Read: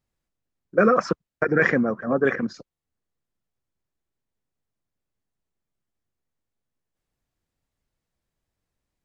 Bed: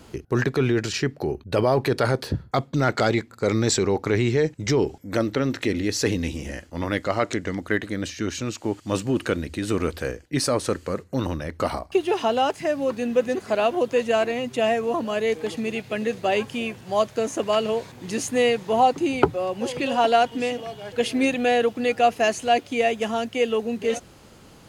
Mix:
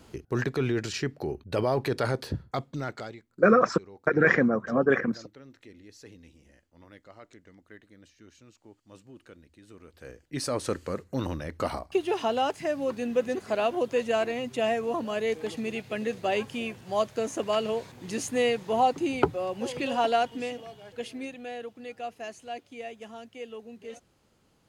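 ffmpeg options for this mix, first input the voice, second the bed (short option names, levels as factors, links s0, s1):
-filter_complex "[0:a]adelay=2650,volume=0.841[s0];[1:a]volume=5.96,afade=t=out:st=2.36:d=0.83:silence=0.0944061,afade=t=in:st=9.91:d=0.8:silence=0.0841395,afade=t=out:st=19.92:d=1.41:silence=0.223872[s1];[s0][s1]amix=inputs=2:normalize=0"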